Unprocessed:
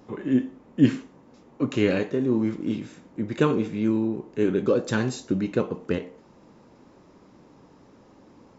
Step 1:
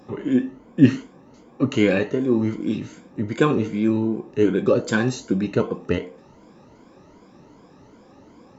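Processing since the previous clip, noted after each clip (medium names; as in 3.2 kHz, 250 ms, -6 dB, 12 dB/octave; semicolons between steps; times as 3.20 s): drifting ripple filter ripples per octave 1.8, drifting +2.6 Hz, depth 11 dB; trim +2.5 dB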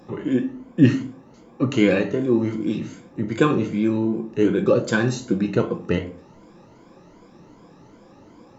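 reverberation, pre-delay 6 ms, DRR 9 dB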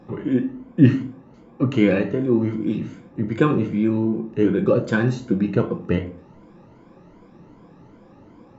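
tone controls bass +4 dB, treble -11 dB; trim -1 dB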